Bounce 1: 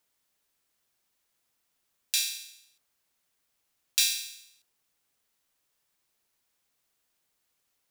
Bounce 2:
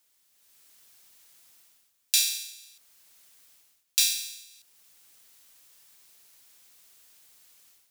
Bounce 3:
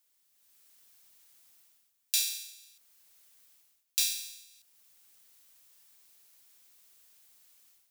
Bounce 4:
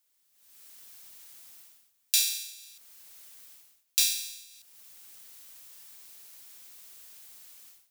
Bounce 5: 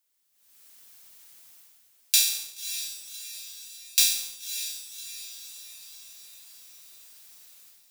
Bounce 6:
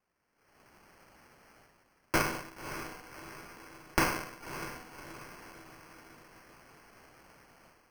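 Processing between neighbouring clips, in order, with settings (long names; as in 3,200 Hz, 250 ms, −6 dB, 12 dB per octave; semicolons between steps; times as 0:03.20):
high-shelf EQ 2,200 Hz +9.5 dB; automatic gain control gain up to 11.5 dB; level −1 dB
high-shelf EQ 12,000 Hz +4.5 dB; level −6.5 dB
automatic gain control gain up to 12 dB; level −1 dB
leveller curve on the samples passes 1; feedback delay with all-pass diffusion 578 ms, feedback 54%, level −10.5 dB
lower of the sound and its delayed copy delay 1.7 ms; decimation without filtering 12×; level −5.5 dB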